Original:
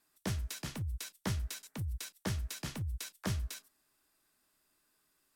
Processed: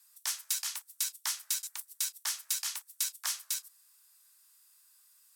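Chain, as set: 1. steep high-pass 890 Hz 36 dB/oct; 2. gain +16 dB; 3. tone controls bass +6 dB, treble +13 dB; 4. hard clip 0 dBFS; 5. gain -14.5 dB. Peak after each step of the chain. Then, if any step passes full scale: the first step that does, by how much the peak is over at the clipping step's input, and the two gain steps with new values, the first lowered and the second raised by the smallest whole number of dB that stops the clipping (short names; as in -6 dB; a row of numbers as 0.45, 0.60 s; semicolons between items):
-27.0, -11.0, -2.5, -2.5, -17.0 dBFS; no overload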